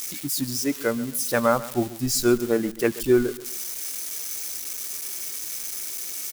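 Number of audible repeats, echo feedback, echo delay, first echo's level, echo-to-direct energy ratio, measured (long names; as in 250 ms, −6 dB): 2, 33%, 133 ms, −17.0 dB, −16.5 dB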